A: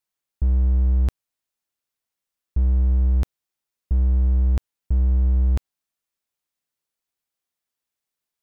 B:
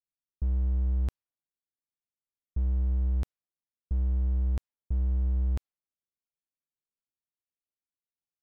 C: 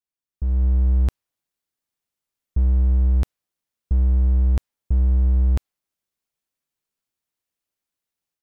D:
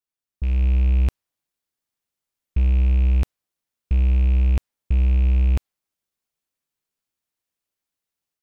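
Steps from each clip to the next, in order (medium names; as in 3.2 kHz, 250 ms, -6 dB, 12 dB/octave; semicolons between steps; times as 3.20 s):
level-controlled noise filter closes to 360 Hz, open at -16.5 dBFS; trim -8.5 dB
level rider gain up to 9.5 dB
rattle on loud lows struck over -20 dBFS, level -30 dBFS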